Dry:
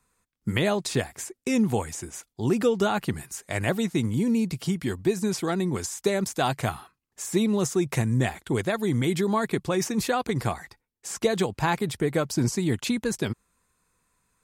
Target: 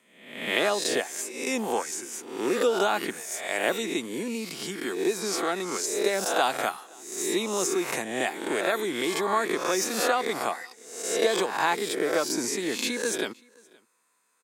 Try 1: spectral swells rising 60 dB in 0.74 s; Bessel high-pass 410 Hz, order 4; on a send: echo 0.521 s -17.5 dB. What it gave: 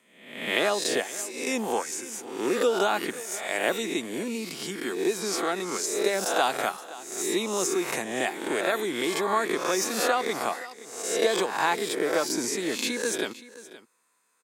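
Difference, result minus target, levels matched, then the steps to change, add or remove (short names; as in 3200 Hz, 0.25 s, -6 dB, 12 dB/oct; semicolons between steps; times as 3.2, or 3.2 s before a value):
echo-to-direct +10 dB
change: echo 0.521 s -27.5 dB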